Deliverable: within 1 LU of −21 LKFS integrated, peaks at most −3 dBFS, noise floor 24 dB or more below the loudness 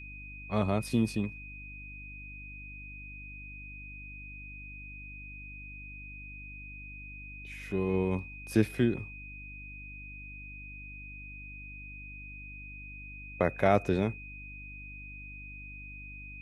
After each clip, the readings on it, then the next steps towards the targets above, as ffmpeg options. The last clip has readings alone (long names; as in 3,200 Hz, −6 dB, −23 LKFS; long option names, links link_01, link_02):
mains hum 50 Hz; hum harmonics up to 300 Hz; level of the hum −45 dBFS; interfering tone 2,500 Hz; level of the tone −45 dBFS; integrated loudness −36.0 LKFS; sample peak −10.0 dBFS; target loudness −21.0 LKFS
→ -af "bandreject=frequency=50:width_type=h:width=4,bandreject=frequency=100:width_type=h:width=4,bandreject=frequency=150:width_type=h:width=4,bandreject=frequency=200:width_type=h:width=4,bandreject=frequency=250:width_type=h:width=4,bandreject=frequency=300:width_type=h:width=4"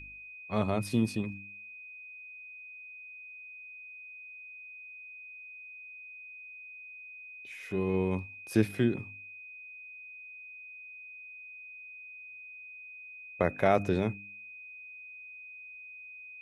mains hum none found; interfering tone 2,500 Hz; level of the tone −45 dBFS
→ -af "bandreject=frequency=2500:width=30"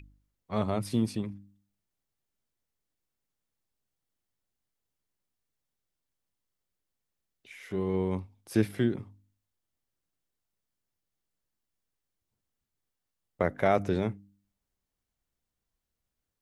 interfering tone none found; integrated loudness −30.5 LKFS; sample peak −10.5 dBFS; target loudness −21.0 LKFS
→ -af "volume=9.5dB,alimiter=limit=-3dB:level=0:latency=1"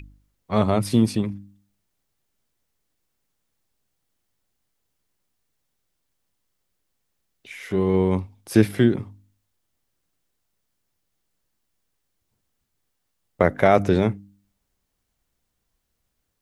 integrated loudness −21.5 LKFS; sample peak −3.0 dBFS; background noise floor −76 dBFS